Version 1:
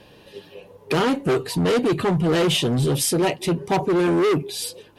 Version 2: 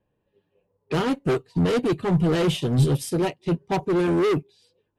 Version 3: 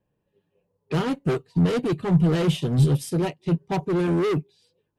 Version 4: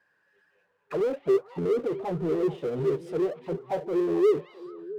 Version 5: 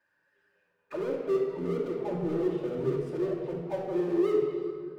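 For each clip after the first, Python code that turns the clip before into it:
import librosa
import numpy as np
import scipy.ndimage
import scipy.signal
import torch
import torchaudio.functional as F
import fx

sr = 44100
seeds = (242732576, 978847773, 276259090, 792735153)

y1 = fx.env_lowpass(x, sr, base_hz=1600.0, full_db=-18.5)
y1 = fx.low_shelf(y1, sr, hz=150.0, db=8.5)
y1 = fx.upward_expand(y1, sr, threshold_db=-32.0, expansion=2.5)
y2 = fx.peak_eq(y1, sr, hz=160.0, db=6.0, octaves=0.51)
y2 = F.gain(torch.from_numpy(y2), -2.5).numpy()
y3 = fx.auto_wah(y2, sr, base_hz=400.0, top_hz=1600.0, q=8.7, full_db=-19.0, direction='down')
y3 = fx.power_curve(y3, sr, exponent=0.7)
y3 = fx.echo_stepped(y3, sr, ms=220, hz=2600.0, octaves=-1.4, feedback_pct=70, wet_db=-10)
y3 = F.gain(torch.from_numpy(y3), 4.5).numpy()
y4 = fx.room_shoebox(y3, sr, seeds[0], volume_m3=2700.0, walls='mixed', distance_m=2.6)
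y4 = F.gain(torch.from_numpy(y4), -7.0).numpy()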